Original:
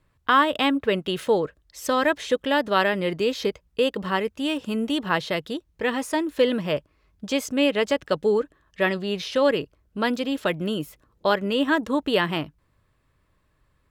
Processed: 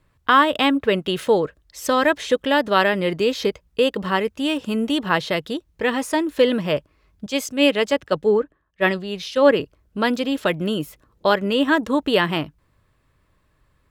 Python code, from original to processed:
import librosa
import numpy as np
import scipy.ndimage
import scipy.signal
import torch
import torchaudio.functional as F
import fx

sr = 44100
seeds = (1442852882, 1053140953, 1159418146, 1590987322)

y = fx.band_widen(x, sr, depth_pct=100, at=(7.26, 9.6))
y = y * librosa.db_to_amplitude(3.5)